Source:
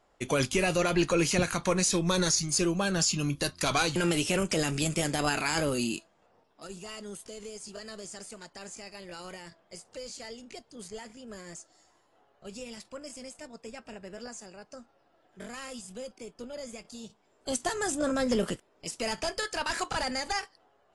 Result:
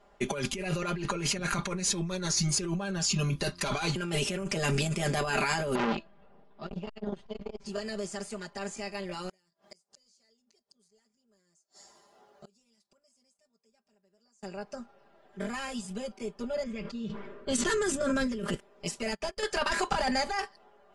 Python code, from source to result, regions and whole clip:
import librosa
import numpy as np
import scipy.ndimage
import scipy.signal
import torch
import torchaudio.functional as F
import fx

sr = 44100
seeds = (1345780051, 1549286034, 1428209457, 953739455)

y = fx.chain(x, sr, fx.lowpass(hz=4300.0, slope=24),
    fx.low_shelf(hz=200.0, db=11.0),
    fx.transformer_sat(knee_hz=1800.0), at=(5.75, 7.66))
y = fx.chain(y, sr, fx.highpass(hz=110.0, slope=6),
    fx.gate_flip(shuts_db=-42.0, range_db=-34),
    fx.high_shelf_res(hz=3700.0, db=8.5, q=1.5), at=(9.29, 14.43))
y = fx.chain(y, sr, fx.env_lowpass(base_hz=1800.0, full_db=-25.5),
    fx.peak_eq(hz=760.0, db=-14.5, octaves=0.5),
    fx.sustainer(db_per_s=36.0), at=(16.63, 18.45))
y = fx.chain(y, sr, fx.level_steps(step_db=12),
    fx.upward_expand(threshold_db=-52.0, expansion=2.5), at=(18.99, 19.43))
y = fx.high_shelf(y, sr, hz=4700.0, db=-9.0)
y = y + 0.98 * np.pad(y, (int(5.0 * sr / 1000.0), 0))[:len(y)]
y = fx.over_compress(y, sr, threshold_db=-30.0, ratio=-1.0)